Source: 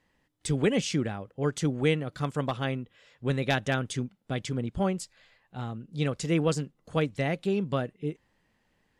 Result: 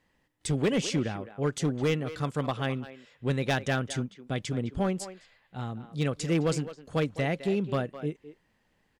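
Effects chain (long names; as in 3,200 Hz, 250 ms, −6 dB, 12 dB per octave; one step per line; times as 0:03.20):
far-end echo of a speakerphone 210 ms, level −12 dB
gain into a clipping stage and back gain 20 dB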